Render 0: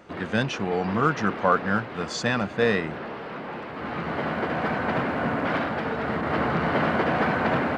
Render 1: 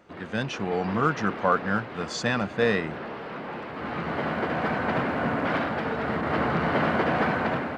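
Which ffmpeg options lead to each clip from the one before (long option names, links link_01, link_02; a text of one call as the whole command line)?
ffmpeg -i in.wav -af "dynaudnorm=framelen=190:gausssize=5:maxgain=6dB,volume=-6.5dB" out.wav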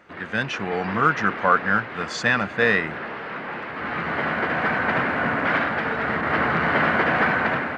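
ffmpeg -i in.wav -af "equalizer=frequency=1800:width_type=o:width=1.4:gain=9.5" out.wav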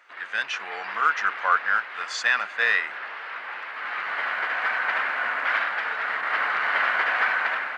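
ffmpeg -i in.wav -af "highpass=1100" out.wav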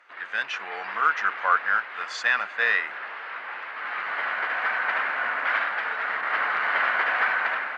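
ffmpeg -i in.wav -af "aemphasis=mode=reproduction:type=cd" out.wav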